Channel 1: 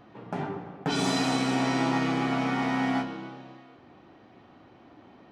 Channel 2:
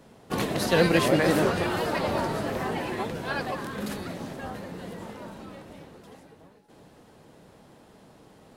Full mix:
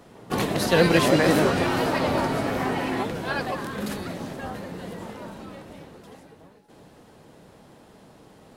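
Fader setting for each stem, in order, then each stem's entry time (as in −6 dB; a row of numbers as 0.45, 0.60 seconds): −4.0, +2.5 decibels; 0.00, 0.00 seconds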